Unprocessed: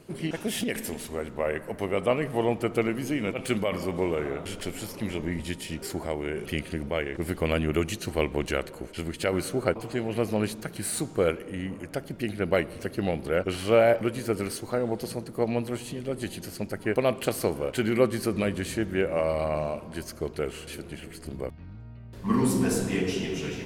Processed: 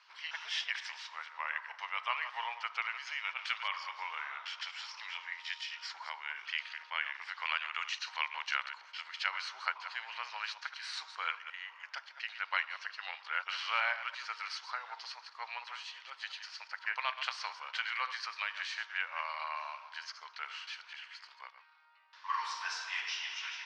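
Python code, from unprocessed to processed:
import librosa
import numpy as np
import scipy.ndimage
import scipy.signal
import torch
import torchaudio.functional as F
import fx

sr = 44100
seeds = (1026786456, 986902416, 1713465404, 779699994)

y = fx.reverse_delay(x, sr, ms=115, wet_db=-11)
y = scipy.signal.sosfilt(scipy.signal.cheby1(4, 1.0, [940.0, 5600.0], 'bandpass', fs=sr, output='sos'), y)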